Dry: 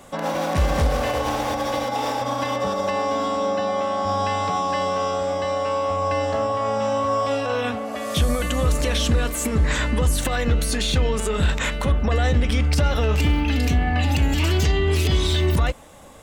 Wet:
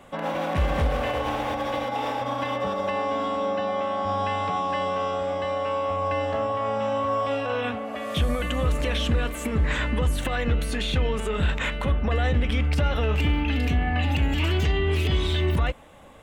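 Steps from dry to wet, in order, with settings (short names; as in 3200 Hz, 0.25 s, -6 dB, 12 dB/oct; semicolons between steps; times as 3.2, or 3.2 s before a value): resonant high shelf 3900 Hz -7.5 dB, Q 1.5; gain -3.5 dB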